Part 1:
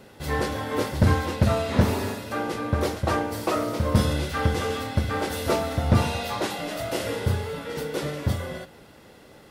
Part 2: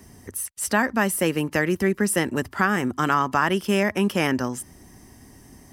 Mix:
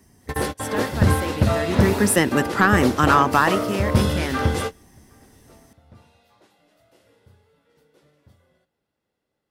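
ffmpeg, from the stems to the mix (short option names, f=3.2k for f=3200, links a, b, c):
-filter_complex "[0:a]volume=2dB[a];[1:a]acontrast=84,volume=-1.5dB,afade=t=in:st=1.59:d=0.61:silence=0.223872,afade=t=out:st=3.39:d=0.22:silence=0.316228,asplit=2[b][c];[c]apad=whole_len=419032[d];[a][d]sidechaingate=range=-32dB:threshold=-43dB:ratio=16:detection=peak[e];[e][b]amix=inputs=2:normalize=0"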